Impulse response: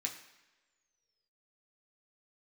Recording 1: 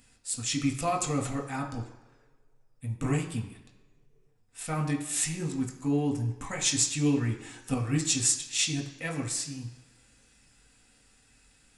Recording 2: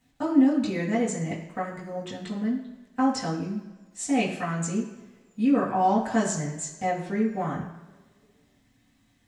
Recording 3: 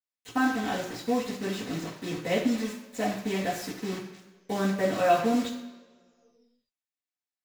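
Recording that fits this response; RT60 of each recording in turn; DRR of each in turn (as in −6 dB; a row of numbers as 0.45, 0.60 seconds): 1; non-exponential decay, non-exponential decay, non-exponential decay; 0.0, −8.5, −16.5 decibels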